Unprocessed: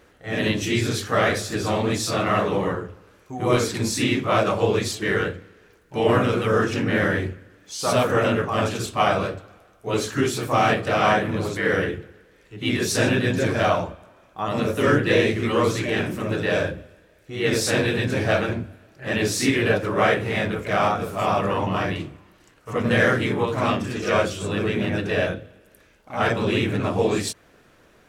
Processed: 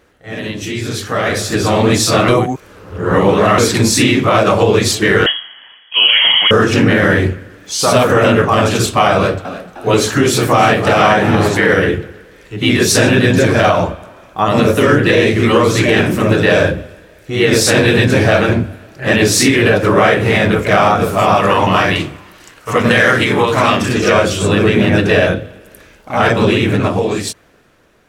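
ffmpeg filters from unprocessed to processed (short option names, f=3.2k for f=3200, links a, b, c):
-filter_complex "[0:a]asettb=1/sr,asplit=3[a][b][c];[a]atrim=end=5.264[d];[b]atrim=start=5.26:end=6.51,asetpts=PTS-STARTPTS,afade=t=in:d=0.004:c=qsin,afade=t=out:st=1.246:d=0.004:c=qsin,lowpass=f=2.9k:t=q:w=0.5098,lowpass=f=2.9k:t=q:w=0.6013,lowpass=f=2.9k:t=q:w=0.9,lowpass=f=2.9k:t=q:w=2.563,afreqshift=-3400[e];[c]atrim=start=6.506[f];[d][e]acrossfade=d=0.004:c1=hsin:c2=qsin[g];[g][f]acrossfade=d=0.004:c1=qsin:c2=hsin,asettb=1/sr,asplit=3[h][i][j];[h]atrim=end=9.144[k];[i]atrim=start=9.14:end=11.71,asetpts=PTS-STARTPTS,afade=t=in:d=0.004:c=qsin,afade=t=out:st=2.566:d=0.004:c=qsin,asplit=5[l][m][n][o][p];[m]adelay=307,afreqshift=81,volume=-15dB[q];[n]adelay=614,afreqshift=162,volume=-21.7dB[r];[o]adelay=921,afreqshift=243,volume=-28.5dB[s];[p]adelay=1228,afreqshift=324,volume=-35.2dB[t];[l][q][r][s][t]amix=inputs=5:normalize=0,atrim=end_sample=113337[u];[j]atrim=start=11.706[v];[k][u]acrossfade=d=0.004:c1=hsin:c2=qsin[w];[w][v]acrossfade=d=0.004:c1=qsin:c2=hsin,asettb=1/sr,asplit=3[x][y][z];[x]atrim=end=21.364[aa];[y]atrim=start=21.36:end=23.89,asetpts=PTS-STARTPTS,afade=t=in:d=0.004:c=qsin,afade=t=out:st=2.526:d=0.004:c=qsin,tiltshelf=f=670:g=-4[ab];[z]atrim=start=23.886[ac];[aa][ab]acrossfade=d=0.004:c1=hsin:c2=qsin[ad];[ad][ac]acrossfade=d=0.004:c1=qsin:c2=hsin,asplit=3[ae][af][ag];[ae]atrim=end=2.282[ah];[af]atrim=start=2.278:end=3.582,asetpts=PTS-STARTPTS,areverse[ai];[ag]atrim=start=3.578[aj];[ah][ai]acrossfade=d=0.004:c1=hsin:c2=hsin[ak];[ak][aj]acrossfade=d=0.004:c1=hsin:c2=hsin,alimiter=limit=-15dB:level=0:latency=1:release=128,dynaudnorm=f=210:g=13:m=14dB,volume=1.5dB"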